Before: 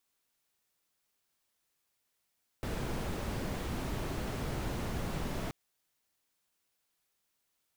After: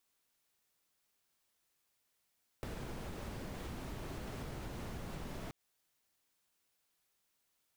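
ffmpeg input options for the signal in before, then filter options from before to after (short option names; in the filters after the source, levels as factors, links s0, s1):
-f lavfi -i "anoisesrc=c=brown:a=0.0785:d=2.88:r=44100:seed=1"
-af "acompressor=threshold=0.00891:ratio=6"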